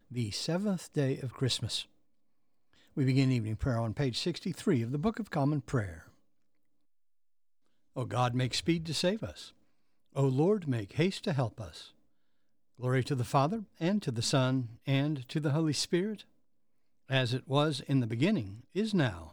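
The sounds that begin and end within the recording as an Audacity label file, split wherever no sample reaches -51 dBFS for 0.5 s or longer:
2.730000	6.090000	sound
7.960000	9.500000	sound
10.150000	11.900000	sound
12.790000	16.220000	sound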